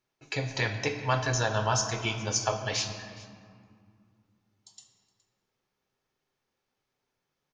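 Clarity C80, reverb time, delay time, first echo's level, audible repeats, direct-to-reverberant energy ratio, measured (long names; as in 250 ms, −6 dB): 9.0 dB, 2.2 s, 417 ms, −20.5 dB, 1, 5.0 dB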